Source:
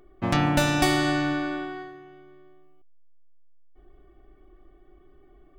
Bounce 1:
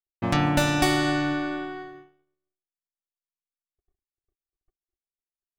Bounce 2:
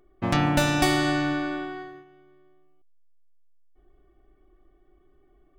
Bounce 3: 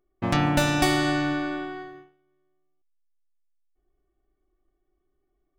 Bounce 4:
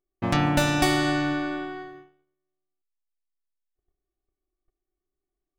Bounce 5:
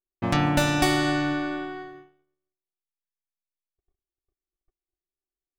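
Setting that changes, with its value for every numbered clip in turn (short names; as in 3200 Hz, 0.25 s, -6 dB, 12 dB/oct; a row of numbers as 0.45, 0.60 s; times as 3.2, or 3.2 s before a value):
gate, range: -59, -6, -20, -32, -45 dB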